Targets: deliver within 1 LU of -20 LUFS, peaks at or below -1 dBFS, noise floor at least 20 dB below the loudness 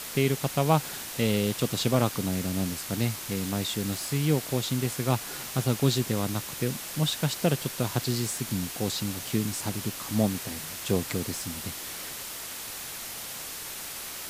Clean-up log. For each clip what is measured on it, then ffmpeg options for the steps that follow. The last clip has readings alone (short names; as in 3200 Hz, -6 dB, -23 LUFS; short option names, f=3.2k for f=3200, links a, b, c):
noise floor -38 dBFS; noise floor target -49 dBFS; loudness -29.0 LUFS; peak -7.5 dBFS; loudness target -20.0 LUFS
-> -af "afftdn=nr=11:nf=-38"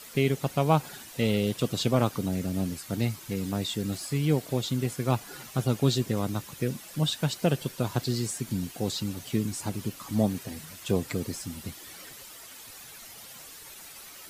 noise floor -47 dBFS; noise floor target -50 dBFS
-> -af "afftdn=nr=6:nf=-47"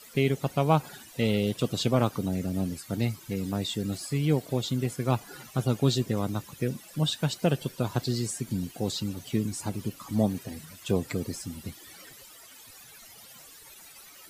noise floor -50 dBFS; loudness -29.5 LUFS; peak -7.5 dBFS; loudness target -20.0 LUFS
-> -af "volume=9.5dB,alimiter=limit=-1dB:level=0:latency=1"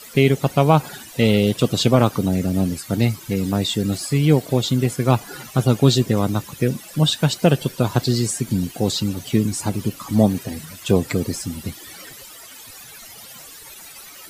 loudness -20.0 LUFS; peak -1.0 dBFS; noise floor -41 dBFS